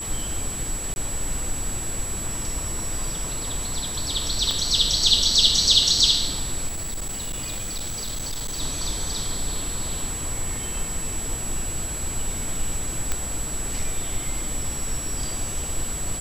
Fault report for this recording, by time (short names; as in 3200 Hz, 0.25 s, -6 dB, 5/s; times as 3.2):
tone 7800 Hz -30 dBFS
0.94–0.96 gap 21 ms
4.51 pop -12 dBFS
6.67–8.61 clipped -26 dBFS
13.12 pop -9 dBFS